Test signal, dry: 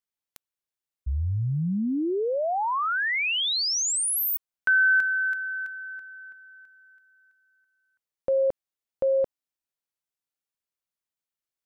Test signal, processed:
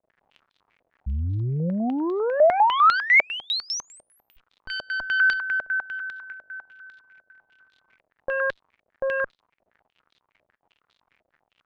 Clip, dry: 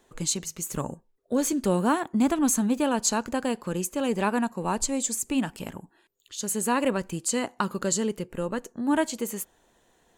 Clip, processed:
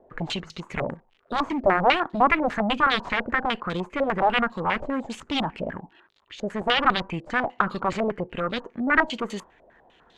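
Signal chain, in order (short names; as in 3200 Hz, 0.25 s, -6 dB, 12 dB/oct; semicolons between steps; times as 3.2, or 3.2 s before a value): crackle 120/s -52 dBFS; added harmonics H 3 -12 dB, 4 -21 dB, 5 -17 dB, 7 -9 dB, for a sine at -8.5 dBFS; stepped low-pass 10 Hz 620–3800 Hz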